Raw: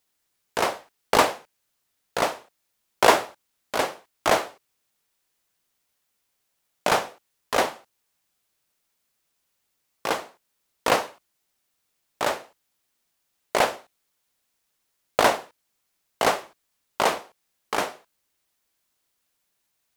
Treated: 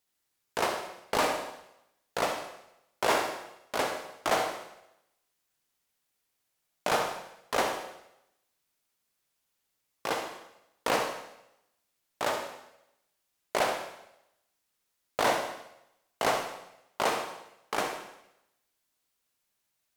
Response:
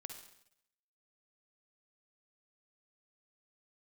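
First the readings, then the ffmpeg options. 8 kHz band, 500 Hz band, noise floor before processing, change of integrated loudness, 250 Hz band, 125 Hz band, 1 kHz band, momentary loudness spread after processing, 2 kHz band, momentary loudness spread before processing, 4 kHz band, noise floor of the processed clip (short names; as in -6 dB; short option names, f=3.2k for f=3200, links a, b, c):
-5.5 dB, -6.0 dB, -76 dBFS, -6.5 dB, -5.5 dB, -5.5 dB, -6.0 dB, 17 LU, -5.5 dB, 15 LU, -5.5 dB, -80 dBFS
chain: -filter_complex "[0:a]alimiter=limit=-10dB:level=0:latency=1:release=15[a];[1:a]atrim=start_sample=2205,asetrate=40572,aresample=44100[b];[a][b]afir=irnorm=-1:irlink=0"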